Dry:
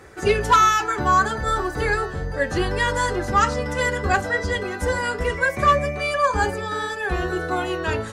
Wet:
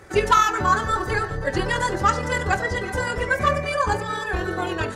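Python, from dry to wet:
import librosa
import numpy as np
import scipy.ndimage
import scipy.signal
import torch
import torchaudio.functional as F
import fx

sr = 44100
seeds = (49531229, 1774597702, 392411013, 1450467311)

y = fx.stretch_grains(x, sr, factor=0.61, grain_ms=47.0)
y = y + 10.0 ** (-21.0 / 20.0) * np.pad(y, (int(409 * sr / 1000.0), 0))[:len(y)]
y = fx.rev_fdn(y, sr, rt60_s=0.75, lf_ratio=1.0, hf_ratio=0.6, size_ms=53.0, drr_db=11.0)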